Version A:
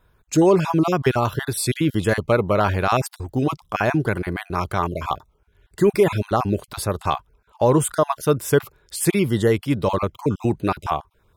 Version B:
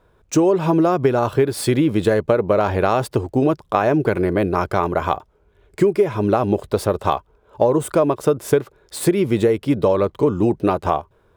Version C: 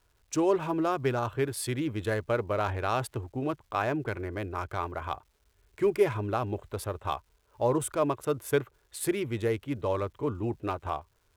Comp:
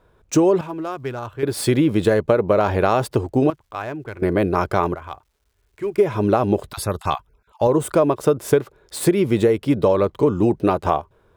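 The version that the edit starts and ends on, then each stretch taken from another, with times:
B
0:00.61–0:01.43: punch in from C
0:03.50–0:04.22: punch in from C
0:04.95–0:05.98: punch in from C
0:06.70–0:07.67: punch in from A

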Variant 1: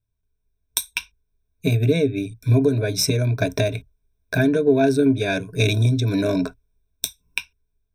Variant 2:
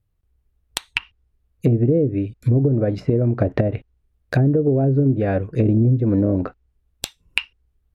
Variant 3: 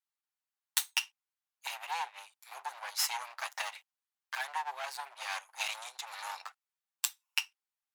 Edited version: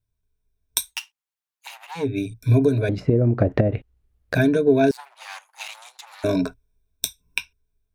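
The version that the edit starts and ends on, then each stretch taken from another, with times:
1
0:00.89–0:02.03: punch in from 3, crossfade 0.16 s
0:02.89–0:04.35: punch in from 2
0:04.91–0:06.24: punch in from 3

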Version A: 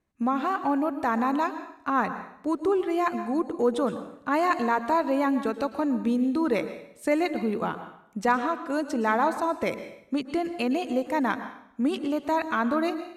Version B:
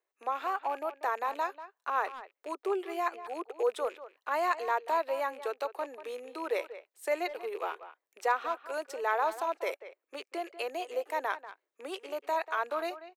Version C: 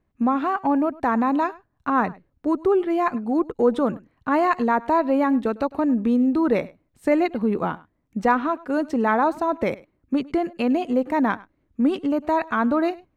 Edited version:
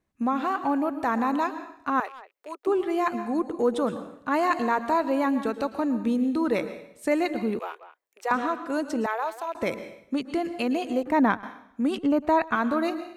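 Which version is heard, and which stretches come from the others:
A
0:02.00–0:02.67: punch in from B
0:07.59–0:08.31: punch in from B
0:09.06–0:09.55: punch in from B
0:11.03–0:11.43: punch in from C
0:11.98–0:12.55: punch in from C

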